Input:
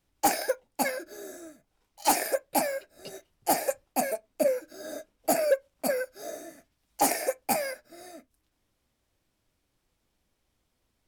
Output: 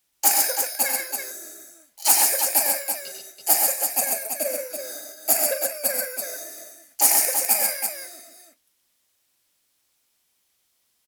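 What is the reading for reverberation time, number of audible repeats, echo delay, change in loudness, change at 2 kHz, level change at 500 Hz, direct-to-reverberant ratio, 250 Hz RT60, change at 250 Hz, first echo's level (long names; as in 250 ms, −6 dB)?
no reverb audible, 5, 41 ms, +8.5 dB, +4.0 dB, −3.0 dB, no reverb audible, no reverb audible, −7.0 dB, −10.5 dB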